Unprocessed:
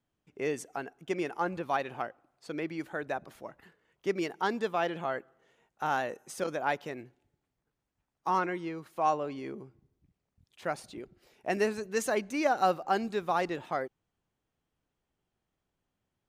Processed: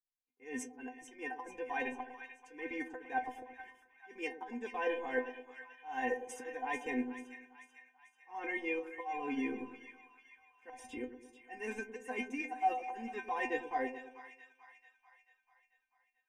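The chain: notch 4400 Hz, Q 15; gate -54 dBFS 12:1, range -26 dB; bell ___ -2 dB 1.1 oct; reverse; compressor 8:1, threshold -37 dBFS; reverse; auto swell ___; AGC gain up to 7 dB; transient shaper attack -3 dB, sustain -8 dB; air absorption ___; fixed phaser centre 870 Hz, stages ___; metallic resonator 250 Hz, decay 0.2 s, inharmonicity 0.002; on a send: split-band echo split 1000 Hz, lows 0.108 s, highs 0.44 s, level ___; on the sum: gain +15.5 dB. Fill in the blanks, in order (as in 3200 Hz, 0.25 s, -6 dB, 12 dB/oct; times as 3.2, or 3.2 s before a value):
240 Hz, 0.236 s, 58 m, 8, -11 dB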